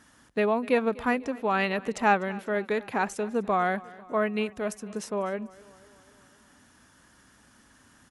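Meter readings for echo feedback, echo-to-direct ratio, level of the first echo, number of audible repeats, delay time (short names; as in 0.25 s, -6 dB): 59%, -19.0 dB, -21.0 dB, 4, 0.248 s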